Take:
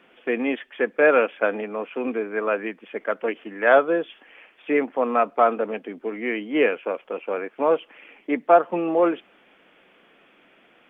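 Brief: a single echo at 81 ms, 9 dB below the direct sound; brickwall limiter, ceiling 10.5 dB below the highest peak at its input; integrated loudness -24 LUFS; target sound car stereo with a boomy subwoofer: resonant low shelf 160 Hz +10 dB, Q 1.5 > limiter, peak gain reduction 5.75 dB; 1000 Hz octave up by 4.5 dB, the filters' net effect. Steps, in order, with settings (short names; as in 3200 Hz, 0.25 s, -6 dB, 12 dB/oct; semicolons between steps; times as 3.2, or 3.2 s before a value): bell 1000 Hz +7.5 dB; limiter -10 dBFS; resonant low shelf 160 Hz +10 dB, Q 1.5; echo 81 ms -9 dB; gain +2 dB; limiter -11.5 dBFS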